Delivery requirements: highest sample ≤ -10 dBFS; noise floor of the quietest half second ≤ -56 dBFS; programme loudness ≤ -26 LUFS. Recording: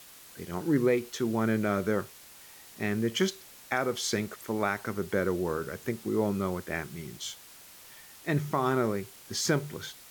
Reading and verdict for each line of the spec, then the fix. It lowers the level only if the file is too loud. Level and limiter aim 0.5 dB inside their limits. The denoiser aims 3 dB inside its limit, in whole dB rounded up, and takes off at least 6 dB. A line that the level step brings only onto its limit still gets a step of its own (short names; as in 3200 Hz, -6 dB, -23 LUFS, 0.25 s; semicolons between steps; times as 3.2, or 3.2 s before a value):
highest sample -14.0 dBFS: OK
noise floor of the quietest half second -51 dBFS: fail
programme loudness -30.5 LUFS: OK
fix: denoiser 8 dB, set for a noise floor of -51 dBFS